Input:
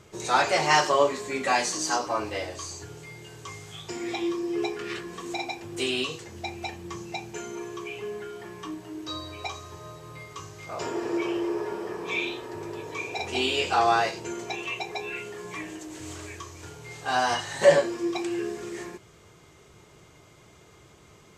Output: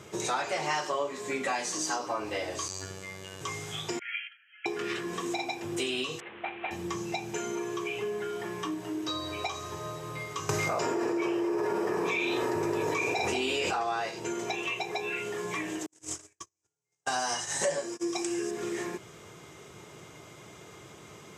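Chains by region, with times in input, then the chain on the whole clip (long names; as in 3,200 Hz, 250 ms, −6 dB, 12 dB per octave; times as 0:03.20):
0:02.68–0:03.41: phases set to zero 95.3 Hz + flutter between parallel walls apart 11.1 metres, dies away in 0.56 s + highs frequency-modulated by the lows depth 0.22 ms
0:03.99–0:04.66: linear-phase brick-wall band-pass 1,300–3,300 Hz + noise gate −46 dBFS, range −12 dB
0:06.20–0:06.71: variable-slope delta modulation 16 kbit/s + high-pass filter 890 Hz 6 dB per octave
0:10.49–0:13.83: parametric band 3,300 Hz −6.5 dB 0.37 octaves + envelope flattener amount 100%
0:15.86–0:18.51: flat-topped bell 7,300 Hz +11.5 dB 1.3 octaves + noise gate −33 dBFS, range −53 dB
whole clip: high-pass filter 120 Hz 12 dB per octave; notch filter 4,400 Hz, Q 12; downward compressor 4 to 1, threshold −36 dBFS; level +5.5 dB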